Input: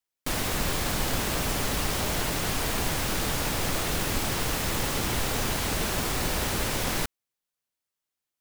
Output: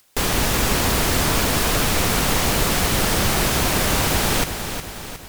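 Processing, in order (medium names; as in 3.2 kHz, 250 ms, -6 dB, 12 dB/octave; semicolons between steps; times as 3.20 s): upward compressor, threshold -45 dBFS; wide varispeed 1.59×; bit-crushed delay 362 ms, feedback 55%, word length 9-bit, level -8.5 dB; trim +8 dB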